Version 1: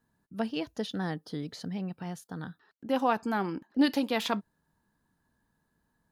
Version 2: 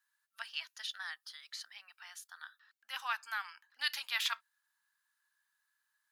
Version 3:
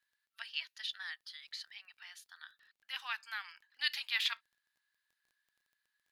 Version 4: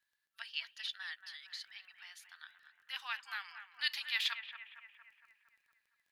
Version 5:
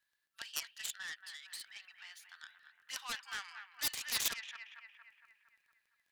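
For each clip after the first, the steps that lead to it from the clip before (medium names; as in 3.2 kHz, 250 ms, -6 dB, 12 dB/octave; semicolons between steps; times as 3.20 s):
inverse Chebyshev high-pass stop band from 400 Hz, stop band 60 dB; trim +1 dB
high-order bell 2.9 kHz +8.5 dB; crackle 18 per s -51 dBFS; trim -7 dB
bucket-brigade echo 230 ms, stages 4096, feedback 57%, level -10 dB; trim -1 dB
self-modulated delay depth 0.41 ms; trim +1 dB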